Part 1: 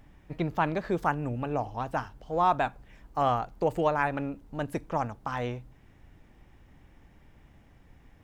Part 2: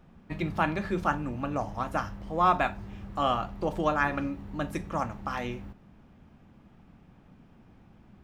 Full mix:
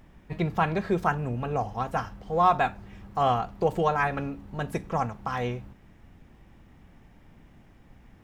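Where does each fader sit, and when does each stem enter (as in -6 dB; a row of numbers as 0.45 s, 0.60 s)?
+1.0 dB, -3.5 dB; 0.00 s, 0.00 s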